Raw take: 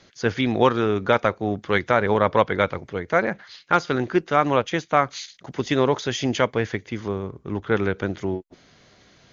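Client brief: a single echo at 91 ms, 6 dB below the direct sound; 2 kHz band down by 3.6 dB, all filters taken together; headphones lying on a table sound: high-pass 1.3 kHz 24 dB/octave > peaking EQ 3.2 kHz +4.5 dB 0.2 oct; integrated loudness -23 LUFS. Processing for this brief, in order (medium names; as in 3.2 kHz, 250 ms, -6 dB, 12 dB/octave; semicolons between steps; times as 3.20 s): high-pass 1.3 kHz 24 dB/octave; peaking EQ 2 kHz -4 dB; peaking EQ 3.2 kHz +4.5 dB 0.2 oct; delay 91 ms -6 dB; trim +7.5 dB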